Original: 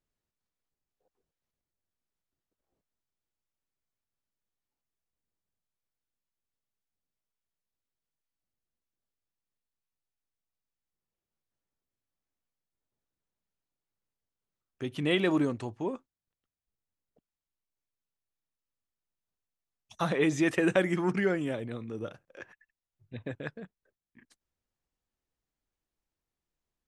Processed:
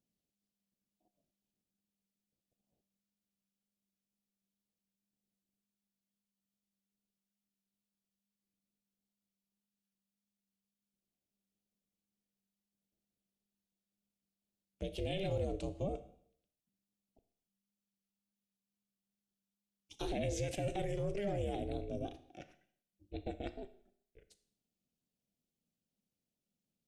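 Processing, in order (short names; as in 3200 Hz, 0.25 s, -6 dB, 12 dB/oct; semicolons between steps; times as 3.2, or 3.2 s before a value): band shelf 1200 Hz -15.5 dB; limiter -28 dBFS, peak gain reduction 11.5 dB; ring modulator 200 Hz; Schroeder reverb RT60 0.65 s, combs from 25 ms, DRR 12 dB; wow and flutter 29 cents; gain +1 dB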